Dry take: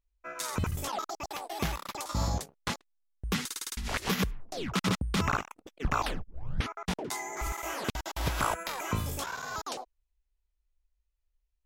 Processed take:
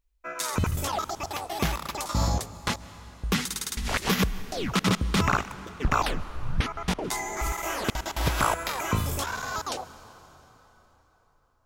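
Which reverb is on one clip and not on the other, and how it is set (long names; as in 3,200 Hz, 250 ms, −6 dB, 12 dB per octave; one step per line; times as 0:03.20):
dense smooth reverb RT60 4.1 s, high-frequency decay 0.75×, pre-delay 120 ms, DRR 15.5 dB
level +5 dB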